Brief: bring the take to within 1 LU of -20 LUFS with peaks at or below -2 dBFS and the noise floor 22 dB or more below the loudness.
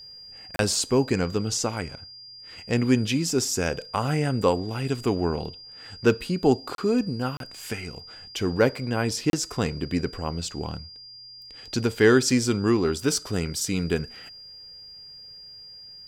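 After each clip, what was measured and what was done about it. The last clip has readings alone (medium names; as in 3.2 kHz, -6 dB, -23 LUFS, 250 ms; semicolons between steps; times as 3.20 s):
dropouts 4; longest dropout 32 ms; steady tone 4.8 kHz; tone level -42 dBFS; loudness -25.0 LUFS; peak level -5.5 dBFS; loudness target -20.0 LUFS
-> interpolate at 0.56/6.75/7.37/9.30 s, 32 ms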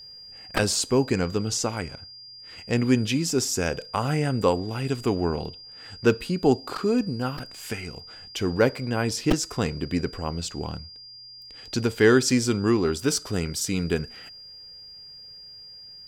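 dropouts 0; steady tone 4.8 kHz; tone level -42 dBFS
-> band-stop 4.8 kHz, Q 30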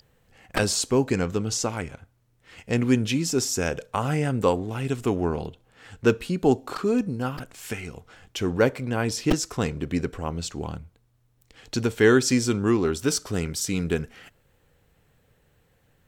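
steady tone not found; loudness -25.0 LUFS; peak level -5.5 dBFS; loudness target -20.0 LUFS
-> trim +5 dB; peak limiter -2 dBFS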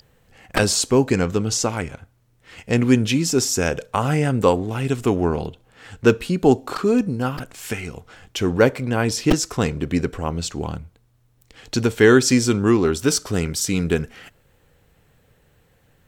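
loudness -20.5 LUFS; peak level -2.0 dBFS; noise floor -60 dBFS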